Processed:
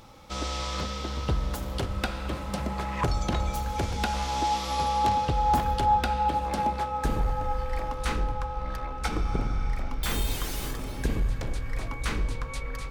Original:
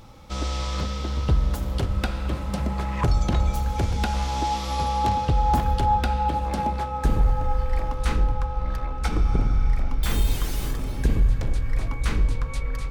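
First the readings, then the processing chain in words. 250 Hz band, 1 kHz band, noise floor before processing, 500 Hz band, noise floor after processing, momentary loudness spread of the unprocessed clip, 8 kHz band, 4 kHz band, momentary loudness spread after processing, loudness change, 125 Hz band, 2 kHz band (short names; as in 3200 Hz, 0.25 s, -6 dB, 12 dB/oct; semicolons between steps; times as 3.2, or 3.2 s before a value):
-3.5 dB, -0.5 dB, -30 dBFS, -1.5 dB, -35 dBFS, 7 LU, 0.0 dB, 0.0 dB, 9 LU, -4.0 dB, -7.0 dB, 0.0 dB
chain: low shelf 210 Hz -8 dB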